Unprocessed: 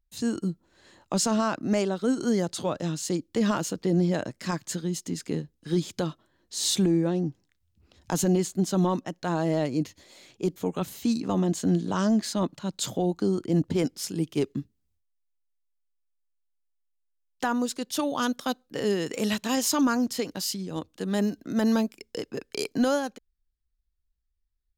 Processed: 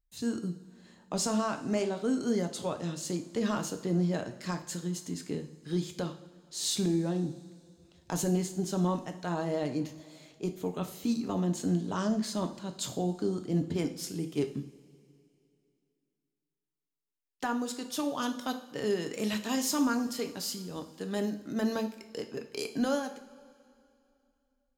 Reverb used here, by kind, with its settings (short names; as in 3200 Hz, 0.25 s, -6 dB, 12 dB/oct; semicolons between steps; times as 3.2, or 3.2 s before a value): two-slope reverb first 0.49 s, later 2.7 s, from -18 dB, DRR 5.5 dB; gain -6 dB